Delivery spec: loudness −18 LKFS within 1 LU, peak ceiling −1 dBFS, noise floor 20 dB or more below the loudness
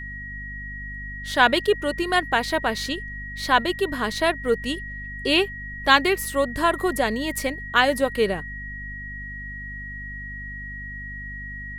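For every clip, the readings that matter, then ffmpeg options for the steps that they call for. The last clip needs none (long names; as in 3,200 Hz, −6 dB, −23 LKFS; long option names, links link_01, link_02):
mains hum 50 Hz; hum harmonics up to 250 Hz; level of the hum −36 dBFS; interfering tone 1,900 Hz; level of the tone −34 dBFS; integrated loudness −24.5 LKFS; sample peak −1.5 dBFS; target loudness −18.0 LKFS
→ -af "bandreject=frequency=50:width_type=h:width=6,bandreject=frequency=100:width_type=h:width=6,bandreject=frequency=150:width_type=h:width=6,bandreject=frequency=200:width_type=h:width=6,bandreject=frequency=250:width_type=h:width=6"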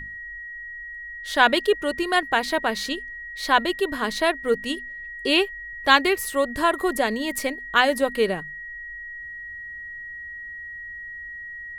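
mains hum none found; interfering tone 1,900 Hz; level of the tone −34 dBFS
→ -af "bandreject=frequency=1900:width=30"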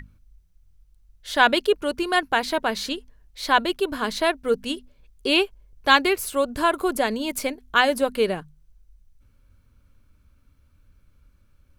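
interfering tone none found; integrated loudness −23.0 LKFS; sample peak −1.5 dBFS; target loudness −18.0 LKFS
→ -af "volume=5dB,alimiter=limit=-1dB:level=0:latency=1"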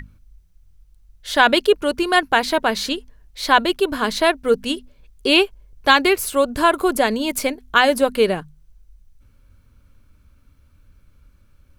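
integrated loudness −18.5 LKFS; sample peak −1.0 dBFS; background noise floor −55 dBFS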